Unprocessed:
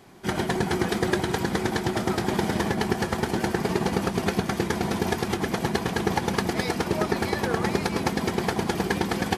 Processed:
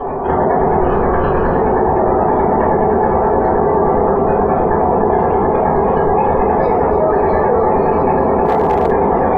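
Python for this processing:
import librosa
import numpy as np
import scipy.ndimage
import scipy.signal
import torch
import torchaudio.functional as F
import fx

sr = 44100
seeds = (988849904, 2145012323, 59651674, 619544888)

y = fx.lower_of_two(x, sr, delay_ms=0.7, at=(0.8, 1.48))
y = fx.band_shelf(y, sr, hz=670.0, db=13.0, octaves=1.7)
y = 10.0 ** (-12.0 / 20.0) * np.tanh(y / 10.0 ** (-12.0 / 20.0))
y = fx.spec_gate(y, sr, threshold_db=-25, keep='strong')
y = scipy.signal.sosfilt(scipy.signal.butter(2, 1700.0, 'lowpass', fs=sr, output='sos'), y)
y = fx.echo_feedback(y, sr, ms=294, feedback_pct=24, wet_db=-9.0)
y = fx.room_shoebox(y, sr, seeds[0], volume_m3=32.0, walls='mixed', distance_m=2.7)
y = fx.quant_dither(y, sr, seeds[1], bits=8, dither='none', at=(8.45, 8.9), fade=0.02)
y = fx.env_flatten(y, sr, amount_pct=70)
y = y * 10.0 ** (-9.5 / 20.0)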